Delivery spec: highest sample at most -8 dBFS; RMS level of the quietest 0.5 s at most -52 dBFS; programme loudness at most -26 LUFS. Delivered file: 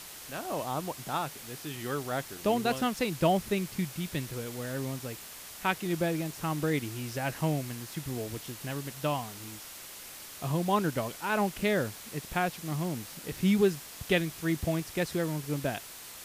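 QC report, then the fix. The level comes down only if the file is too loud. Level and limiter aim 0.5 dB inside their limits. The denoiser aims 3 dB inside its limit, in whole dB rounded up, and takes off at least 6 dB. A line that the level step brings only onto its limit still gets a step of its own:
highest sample -12.5 dBFS: pass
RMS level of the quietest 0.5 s -46 dBFS: fail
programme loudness -32.0 LUFS: pass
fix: noise reduction 9 dB, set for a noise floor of -46 dBFS

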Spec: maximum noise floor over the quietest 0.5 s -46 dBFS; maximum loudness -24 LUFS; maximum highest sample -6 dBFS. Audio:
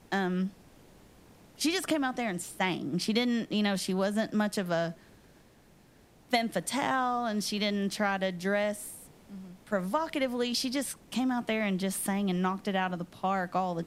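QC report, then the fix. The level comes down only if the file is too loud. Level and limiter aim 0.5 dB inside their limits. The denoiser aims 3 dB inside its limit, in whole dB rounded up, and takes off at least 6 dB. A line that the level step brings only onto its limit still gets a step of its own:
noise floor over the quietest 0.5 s -59 dBFS: pass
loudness -30.5 LUFS: pass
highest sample -12.5 dBFS: pass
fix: none needed

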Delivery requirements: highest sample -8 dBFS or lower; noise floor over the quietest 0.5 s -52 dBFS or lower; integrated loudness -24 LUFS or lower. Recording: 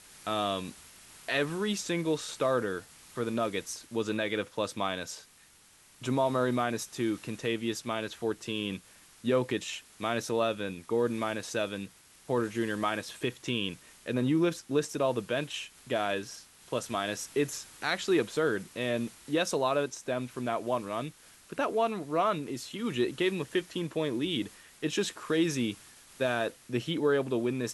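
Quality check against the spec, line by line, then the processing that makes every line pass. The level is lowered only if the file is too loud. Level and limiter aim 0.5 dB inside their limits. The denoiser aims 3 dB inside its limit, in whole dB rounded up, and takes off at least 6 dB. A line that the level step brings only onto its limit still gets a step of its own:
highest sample -14.0 dBFS: pass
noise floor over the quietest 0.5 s -59 dBFS: pass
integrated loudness -31.5 LUFS: pass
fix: none needed

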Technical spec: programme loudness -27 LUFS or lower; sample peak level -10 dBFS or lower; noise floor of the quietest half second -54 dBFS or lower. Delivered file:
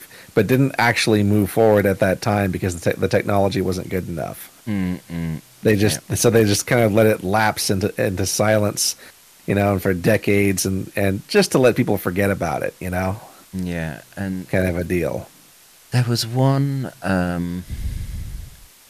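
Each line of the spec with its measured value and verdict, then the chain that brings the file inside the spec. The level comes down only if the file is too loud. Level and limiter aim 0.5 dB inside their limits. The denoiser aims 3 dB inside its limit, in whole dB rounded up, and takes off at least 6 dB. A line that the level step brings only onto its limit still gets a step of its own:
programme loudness -19.5 LUFS: fail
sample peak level -5.0 dBFS: fail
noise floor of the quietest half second -49 dBFS: fail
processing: trim -8 dB

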